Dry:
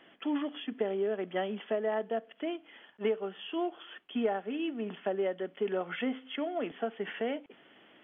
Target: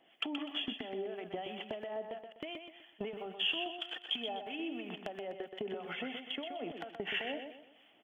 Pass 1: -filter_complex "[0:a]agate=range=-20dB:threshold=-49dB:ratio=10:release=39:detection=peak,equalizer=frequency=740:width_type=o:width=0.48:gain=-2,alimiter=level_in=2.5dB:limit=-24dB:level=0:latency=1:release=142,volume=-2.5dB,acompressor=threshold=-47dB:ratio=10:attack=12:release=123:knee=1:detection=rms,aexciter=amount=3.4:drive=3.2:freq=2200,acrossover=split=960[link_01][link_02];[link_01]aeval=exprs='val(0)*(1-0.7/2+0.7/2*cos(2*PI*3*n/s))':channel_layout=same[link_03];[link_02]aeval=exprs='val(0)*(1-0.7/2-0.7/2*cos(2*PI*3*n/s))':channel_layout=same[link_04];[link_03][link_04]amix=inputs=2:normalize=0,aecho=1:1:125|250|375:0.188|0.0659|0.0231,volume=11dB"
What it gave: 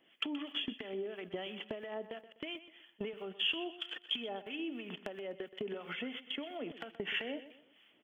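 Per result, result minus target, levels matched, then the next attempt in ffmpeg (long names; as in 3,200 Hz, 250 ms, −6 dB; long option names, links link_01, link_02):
echo-to-direct −7.5 dB; 1,000 Hz band −4.0 dB
-filter_complex "[0:a]agate=range=-20dB:threshold=-49dB:ratio=10:release=39:detection=peak,equalizer=frequency=740:width_type=o:width=0.48:gain=-2,alimiter=level_in=2.5dB:limit=-24dB:level=0:latency=1:release=142,volume=-2.5dB,acompressor=threshold=-47dB:ratio=10:attack=12:release=123:knee=1:detection=rms,aexciter=amount=3.4:drive=3.2:freq=2200,acrossover=split=960[link_01][link_02];[link_01]aeval=exprs='val(0)*(1-0.7/2+0.7/2*cos(2*PI*3*n/s))':channel_layout=same[link_03];[link_02]aeval=exprs='val(0)*(1-0.7/2-0.7/2*cos(2*PI*3*n/s))':channel_layout=same[link_04];[link_03][link_04]amix=inputs=2:normalize=0,aecho=1:1:125|250|375|500:0.447|0.156|0.0547|0.0192,volume=11dB"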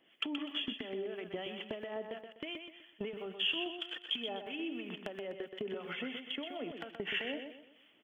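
1,000 Hz band −4.5 dB
-filter_complex "[0:a]agate=range=-20dB:threshold=-49dB:ratio=10:release=39:detection=peak,equalizer=frequency=740:width_type=o:width=0.48:gain=9.5,alimiter=level_in=2.5dB:limit=-24dB:level=0:latency=1:release=142,volume=-2.5dB,acompressor=threshold=-47dB:ratio=10:attack=12:release=123:knee=1:detection=rms,aexciter=amount=3.4:drive=3.2:freq=2200,acrossover=split=960[link_01][link_02];[link_01]aeval=exprs='val(0)*(1-0.7/2+0.7/2*cos(2*PI*3*n/s))':channel_layout=same[link_03];[link_02]aeval=exprs='val(0)*(1-0.7/2-0.7/2*cos(2*PI*3*n/s))':channel_layout=same[link_04];[link_03][link_04]amix=inputs=2:normalize=0,aecho=1:1:125|250|375|500:0.447|0.156|0.0547|0.0192,volume=11dB"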